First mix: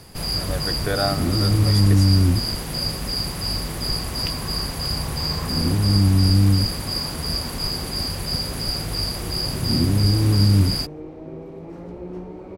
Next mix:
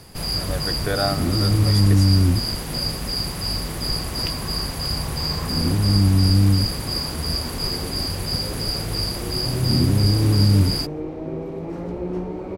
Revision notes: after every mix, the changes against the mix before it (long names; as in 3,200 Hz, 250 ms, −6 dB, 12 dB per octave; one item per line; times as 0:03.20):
second sound +6.5 dB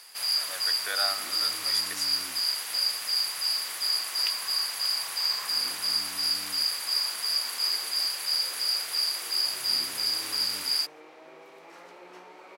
master: add high-pass filter 1,400 Hz 12 dB per octave